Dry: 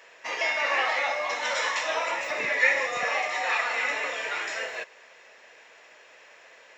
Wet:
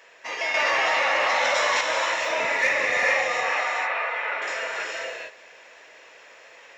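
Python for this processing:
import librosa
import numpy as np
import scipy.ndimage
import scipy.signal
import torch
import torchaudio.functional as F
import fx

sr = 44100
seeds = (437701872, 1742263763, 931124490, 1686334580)

y = 10.0 ** (-14.0 / 20.0) * np.tanh(x / 10.0 ** (-14.0 / 20.0))
y = fx.bandpass_edges(y, sr, low_hz=520.0, high_hz=2100.0, at=(3.41, 4.42))
y = fx.rev_gated(y, sr, seeds[0], gate_ms=480, shape='rising', drr_db=-1.5)
y = fx.env_flatten(y, sr, amount_pct=100, at=(0.54, 1.81))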